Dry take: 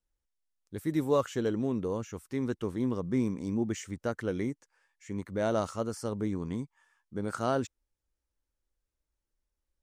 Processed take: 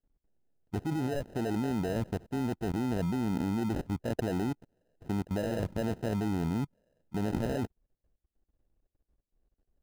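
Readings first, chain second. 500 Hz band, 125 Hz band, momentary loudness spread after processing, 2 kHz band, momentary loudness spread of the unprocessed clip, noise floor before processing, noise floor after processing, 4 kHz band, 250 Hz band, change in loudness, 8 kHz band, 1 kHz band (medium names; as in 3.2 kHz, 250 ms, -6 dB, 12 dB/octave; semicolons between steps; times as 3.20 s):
-3.5 dB, +3.0 dB, 5 LU, -0.5 dB, 10 LU, under -85 dBFS, under -85 dBFS, 0.0 dB, +0.5 dB, -0.5 dB, -4.5 dB, -1.5 dB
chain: level held to a coarse grid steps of 21 dB; sample-and-hold 39×; tilt shelf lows +5.5 dB, about 940 Hz; trim +7.5 dB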